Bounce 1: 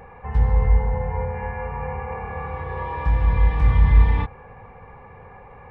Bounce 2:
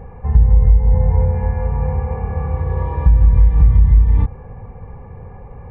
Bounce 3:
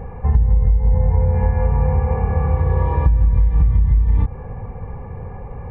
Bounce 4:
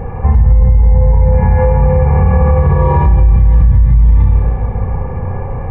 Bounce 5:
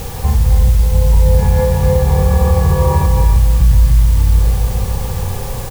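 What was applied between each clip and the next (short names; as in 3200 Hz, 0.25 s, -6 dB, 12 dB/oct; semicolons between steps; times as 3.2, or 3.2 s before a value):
tilt shelf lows +8 dB, about 820 Hz; compressor 12:1, threshold -12 dBFS, peak gain reduction 13 dB; low shelf 150 Hz +7 dB
compressor 6:1, threshold -15 dBFS, peak gain reduction 9.5 dB; gain +4 dB
spring tank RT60 1.8 s, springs 33/56 ms, chirp 35 ms, DRR 0.5 dB; maximiser +9.5 dB; gain -1 dB
added noise white -30 dBFS; on a send: echo 0.282 s -6 dB; on the sum: gain -3.5 dB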